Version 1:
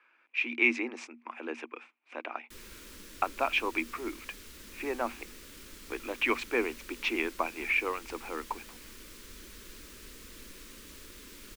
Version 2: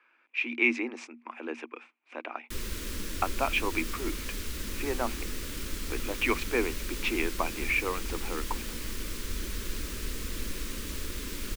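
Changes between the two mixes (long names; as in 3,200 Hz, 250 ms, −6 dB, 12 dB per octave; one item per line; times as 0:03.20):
background +10.0 dB
master: add low-shelf EQ 160 Hz +9 dB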